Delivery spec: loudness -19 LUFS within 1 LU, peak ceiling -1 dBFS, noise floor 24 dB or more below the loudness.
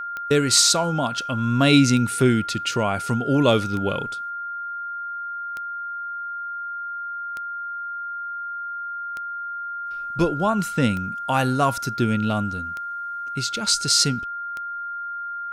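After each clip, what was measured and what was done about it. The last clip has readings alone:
clicks found 9; steady tone 1.4 kHz; tone level -28 dBFS; loudness -23.0 LUFS; peak level -4.5 dBFS; loudness target -19.0 LUFS
-> de-click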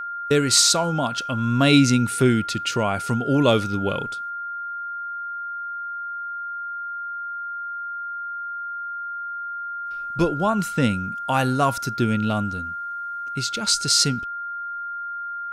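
clicks found 0; steady tone 1.4 kHz; tone level -28 dBFS
-> band-stop 1.4 kHz, Q 30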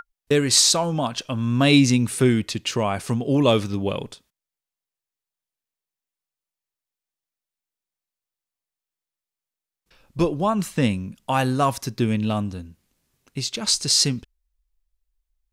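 steady tone not found; loudness -21.0 LUFS; peak level -4.5 dBFS; loudness target -19.0 LUFS
-> trim +2 dB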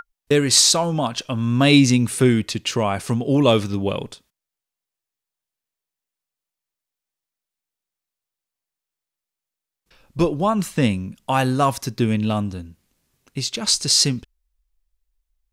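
loudness -19.0 LUFS; peak level -2.5 dBFS; noise floor -87 dBFS

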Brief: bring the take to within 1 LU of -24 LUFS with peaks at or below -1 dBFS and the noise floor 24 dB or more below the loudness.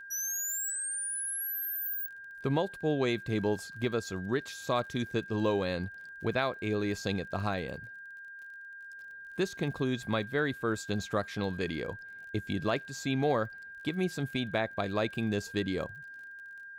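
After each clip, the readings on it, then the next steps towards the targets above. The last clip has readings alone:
tick rate 30 per s; steady tone 1.6 kHz; tone level -44 dBFS; loudness -33.0 LUFS; peak level -17.0 dBFS; loudness target -24.0 LUFS
-> de-click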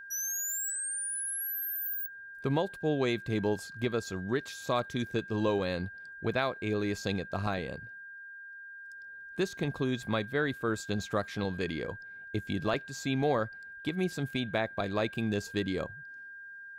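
tick rate 0 per s; steady tone 1.6 kHz; tone level -44 dBFS
-> band-stop 1.6 kHz, Q 30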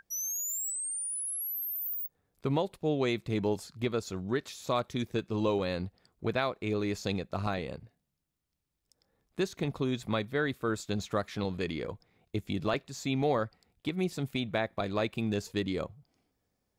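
steady tone not found; loudness -33.0 LUFS; peak level -17.0 dBFS; loudness target -24.0 LUFS
-> trim +9 dB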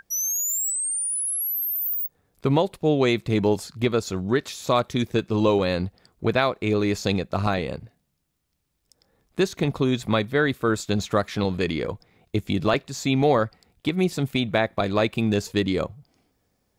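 loudness -24.0 LUFS; peak level -8.0 dBFS; noise floor -73 dBFS

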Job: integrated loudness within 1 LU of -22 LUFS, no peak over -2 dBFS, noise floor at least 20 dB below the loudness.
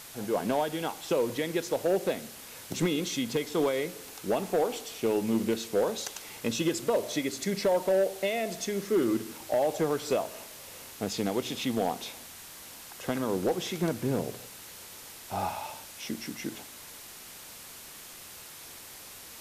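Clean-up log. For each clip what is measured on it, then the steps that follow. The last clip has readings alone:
clipped samples 0.8%; clipping level -19.5 dBFS; noise floor -47 dBFS; noise floor target -51 dBFS; loudness -30.5 LUFS; peak level -19.5 dBFS; loudness target -22.0 LUFS
-> clip repair -19.5 dBFS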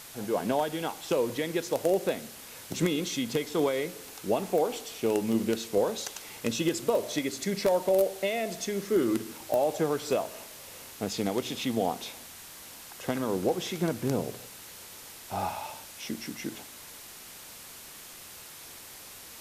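clipped samples 0.0%; noise floor -47 dBFS; noise floor target -50 dBFS
-> noise reduction 6 dB, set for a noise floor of -47 dBFS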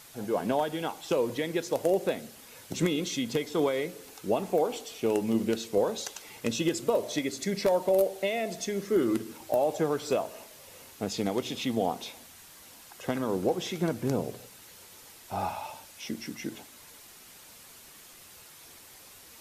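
noise floor -52 dBFS; loudness -30.0 LUFS; peak level -11.0 dBFS; loudness target -22.0 LUFS
-> trim +8 dB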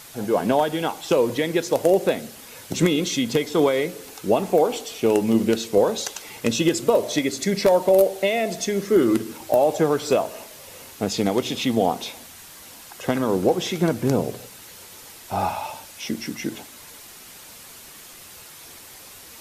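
loudness -22.0 LUFS; peak level -3.0 dBFS; noise floor -44 dBFS

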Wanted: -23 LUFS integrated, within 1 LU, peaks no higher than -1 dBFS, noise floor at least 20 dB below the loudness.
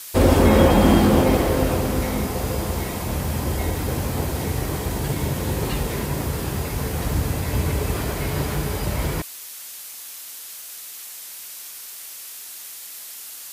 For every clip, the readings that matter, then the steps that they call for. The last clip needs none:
noise floor -38 dBFS; noise floor target -42 dBFS; loudness -22.0 LUFS; peak level -2.5 dBFS; loudness target -23.0 LUFS
-> noise print and reduce 6 dB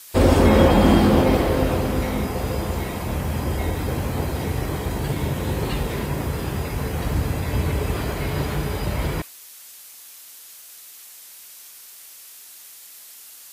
noise floor -44 dBFS; loudness -22.0 LUFS; peak level -3.0 dBFS; loudness target -23.0 LUFS
-> trim -1 dB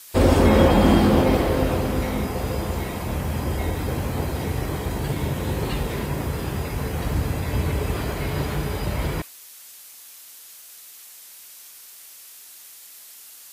loudness -23.0 LUFS; peak level -4.0 dBFS; noise floor -45 dBFS

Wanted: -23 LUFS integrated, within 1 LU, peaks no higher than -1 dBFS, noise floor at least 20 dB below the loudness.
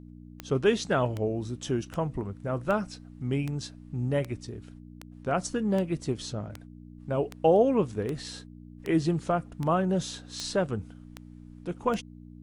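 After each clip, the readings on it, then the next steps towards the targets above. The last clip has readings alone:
clicks found 16; hum 60 Hz; highest harmonic 300 Hz; hum level -45 dBFS; loudness -29.5 LUFS; peak level -11.0 dBFS; loudness target -23.0 LUFS
-> de-click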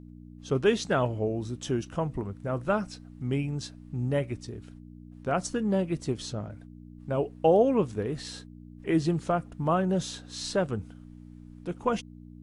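clicks found 0; hum 60 Hz; highest harmonic 300 Hz; hum level -45 dBFS
-> de-hum 60 Hz, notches 5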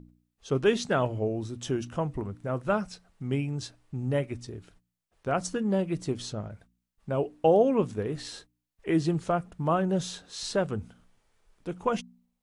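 hum not found; loudness -29.5 LUFS; peak level -11.5 dBFS; loudness target -23.0 LUFS
-> trim +6.5 dB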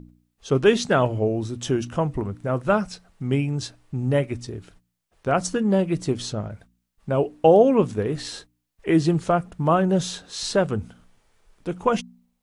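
loudness -23.0 LUFS; peak level -5.0 dBFS; noise floor -75 dBFS

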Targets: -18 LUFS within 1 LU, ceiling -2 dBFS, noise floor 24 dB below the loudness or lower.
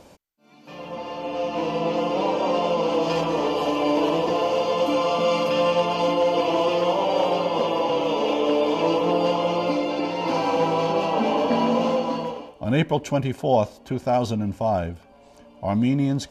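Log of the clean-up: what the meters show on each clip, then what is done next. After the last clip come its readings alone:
loudness -23.0 LUFS; peak level -8.5 dBFS; loudness target -18.0 LUFS
-> trim +5 dB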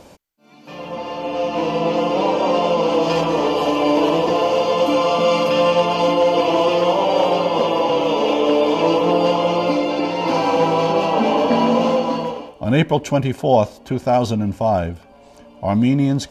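loudness -18.0 LUFS; peak level -3.5 dBFS; noise floor -46 dBFS

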